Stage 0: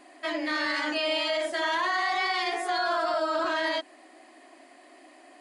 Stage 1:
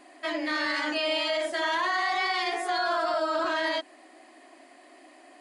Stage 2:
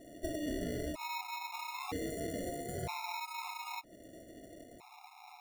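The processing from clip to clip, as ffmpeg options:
ffmpeg -i in.wav -af anull out.wav
ffmpeg -i in.wav -af "acompressor=threshold=-39dB:ratio=3,acrusher=samples=28:mix=1:aa=0.000001,afftfilt=real='re*gt(sin(2*PI*0.52*pts/sr)*(1-2*mod(floor(b*sr/1024/700),2)),0)':imag='im*gt(sin(2*PI*0.52*pts/sr)*(1-2*mod(floor(b*sr/1024/700),2)),0)':win_size=1024:overlap=0.75,volume=2dB" out.wav

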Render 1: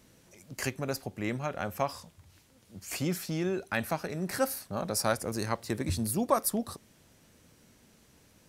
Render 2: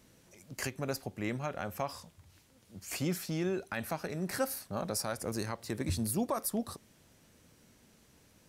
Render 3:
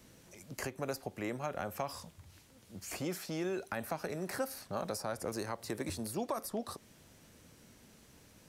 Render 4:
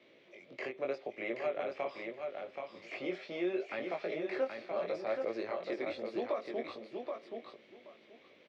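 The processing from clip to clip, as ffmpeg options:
ffmpeg -i in.wav -af "alimiter=limit=-20dB:level=0:latency=1:release=106,volume=-2dB" out.wav
ffmpeg -i in.wav -filter_complex "[0:a]acrossover=split=340|1300|7200[link_01][link_02][link_03][link_04];[link_01]acompressor=threshold=-48dB:ratio=4[link_05];[link_02]acompressor=threshold=-38dB:ratio=4[link_06];[link_03]acompressor=threshold=-50dB:ratio=4[link_07];[link_04]acompressor=threshold=-52dB:ratio=4[link_08];[link_05][link_06][link_07][link_08]amix=inputs=4:normalize=0,volume=3dB" out.wav
ffmpeg -i in.wav -af "flanger=delay=17.5:depth=6.1:speed=0.76,highpass=340,equalizer=frequency=370:width_type=q:width=4:gain=7,equalizer=frequency=580:width_type=q:width=4:gain=7,equalizer=frequency=910:width_type=q:width=4:gain=-6,equalizer=frequency=1500:width_type=q:width=4:gain=-6,equalizer=frequency=2200:width_type=q:width=4:gain=9,equalizer=frequency=3500:width_type=q:width=4:gain=5,lowpass=frequency=3600:width=0.5412,lowpass=frequency=3600:width=1.3066,aecho=1:1:777|1554|2331:0.562|0.0956|0.0163,volume=1.5dB" out.wav

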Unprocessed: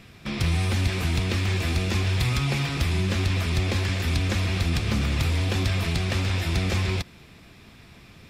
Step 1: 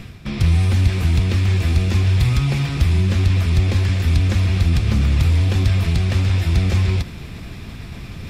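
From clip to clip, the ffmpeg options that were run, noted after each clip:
ffmpeg -i in.wav -af "lowshelf=frequency=170:gain=11.5,areverse,acompressor=mode=upward:threshold=-21dB:ratio=2.5,areverse" out.wav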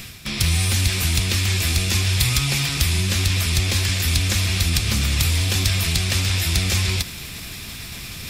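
ffmpeg -i in.wav -af "crystalizer=i=10:c=0,volume=-5.5dB" out.wav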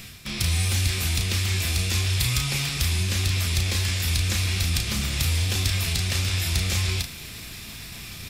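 ffmpeg -i in.wav -filter_complex "[0:a]asplit=2[link_01][link_02];[link_02]adelay=34,volume=-6dB[link_03];[link_01][link_03]amix=inputs=2:normalize=0,volume=-5.5dB" out.wav

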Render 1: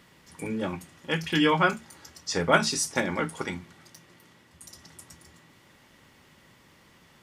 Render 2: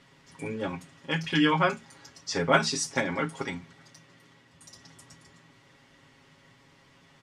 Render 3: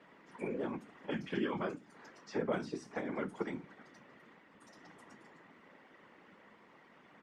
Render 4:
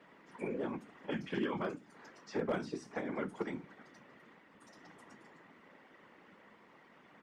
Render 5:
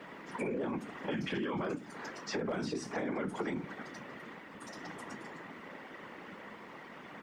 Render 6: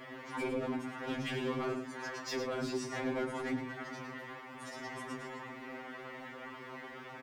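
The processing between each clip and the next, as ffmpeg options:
ffmpeg -i in.wav -af "lowpass=7300,aecho=1:1:7.3:0.65,volume=-2.5dB" out.wav
ffmpeg -i in.wav -filter_complex "[0:a]acrossover=split=370|4300[link_01][link_02][link_03];[link_01]acompressor=threshold=-33dB:ratio=4[link_04];[link_02]acompressor=threshold=-43dB:ratio=4[link_05];[link_03]acompressor=threshold=-45dB:ratio=4[link_06];[link_04][link_05][link_06]amix=inputs=3:normalize=0,afftfilt=real='hypot(re,im)*cos(2*PI*random(0))':imag='hypot(re,im)*sin(2*PI*random(1))':win_size=512:overlap=0.75,acrossover=split=190 2300:gain=0.0708 1 0.126[link_07][link_08][link_09];[link_07][link_08][link_09]amix=inputs=3:normalize=0,volume=7dB" out.wav
ffmpeg -i in.wav -af "volume=26.5dB,asoftclip=hard,volume=-26.5dB" out.wav
ffmpeg -i in.wav -af "alimiter=level_in=11.5dB:limit=-24dB:level=0:latency=1:release=24,volume=-11.5dB,acompressor=threshold=-44dB:ratio=6,volume=12dB" out.wav
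ffmpeg -i in.wav -filter_complex "[0:a]asoftclip=type=hard:threshold=-34.5dB,asplit=2[link_01][link_02];[link_02]aecho=0:1:108:0.376[link_03];[link_01][link_03]amix=inputs=2:normalize=0,afftfilt=real='re*2.45*eq(mod(b,6),0)':imag='im*2.45*eq(mod(b,6),0)':win_size=2048:overlap=0.75,volume=4dB" out.wav

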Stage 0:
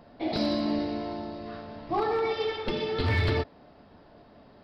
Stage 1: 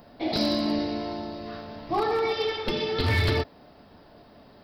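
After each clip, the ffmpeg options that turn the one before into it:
ffmpeg -i in.wav -af "aemphasis=mode=production:type=50fm,volume=2dB" out.wav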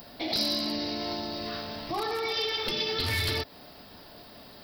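ffmpeg -i in.wav -af "alimiter=level_in=2dB:limit=-24dB:level=0:latency=1:release=148,volume=-2dB,crystalizer=i=5.5:c=0" out.wav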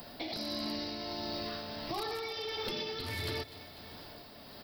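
ffmpeg -i in.wav -filter_complex "[0:a]aecho=1:1:247|494|741|988|1235:0.0891|0.0526|0.031|0.0183|0.0108,acrossover=split=110|1000|2000|5800[link_01][link_02][link_03][link_04][link_05];[link_01]acompressor=threshold=-49dB:ratio=4[link_06];[link_02]acompressor=threshold=-37dB:ratio=4[link_07];[link_03]acompressor=threshold=-48dB:ratio=4[link_08];[link_04]acompressor=threshold=-42dB:ratio=4[link_09];[link_05]acompressor=threshold=-48dB:ratio=4[link_10];[link_06][link_07][link_08][link_09][link_10]amix=inputs=5:normalize=0,tremolo=f=1.5:d=0.33" out.wav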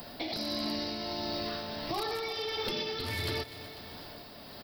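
ffmpeg -i in.wav -af "aecho=1:1:370:0.158,volume=3dB" out.wav

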